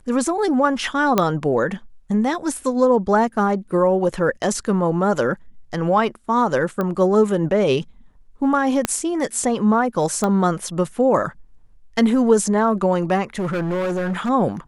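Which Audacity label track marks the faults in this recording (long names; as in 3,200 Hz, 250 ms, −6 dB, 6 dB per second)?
1.180000	1.180000	click −3 dBFS
6.810000	6.810000	click −12 dBFS
8.850000	8.850000	click −4 dBFS
10.240000	10.240000	click −9 dBFS
13.380000	14.300000	clipping −19.5 dBFS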